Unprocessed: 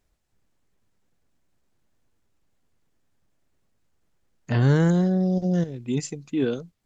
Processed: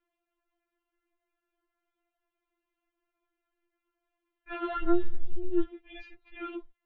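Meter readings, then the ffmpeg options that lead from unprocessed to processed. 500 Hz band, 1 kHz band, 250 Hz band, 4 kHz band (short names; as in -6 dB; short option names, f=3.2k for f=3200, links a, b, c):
-7.5 dB, -2.0 dB, -10.5 dB, -11.5 dB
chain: -af "highpass=f=220:t=q:w=0.5412,highpass=f=220:t=q:w=1.307,lowpass=f=3.2k:t=q:w=0.5176,lowpass=f=3.2k:t=q:w=0.7071,lowpass=f=3.2k:t=q:w=1.932,afreqshift=-180,afftfilt=real='re*4*eq(mod(b,16),0)':imag='im*4*eq(mod(b,16),0)':win_size=2048:overlap=0.75"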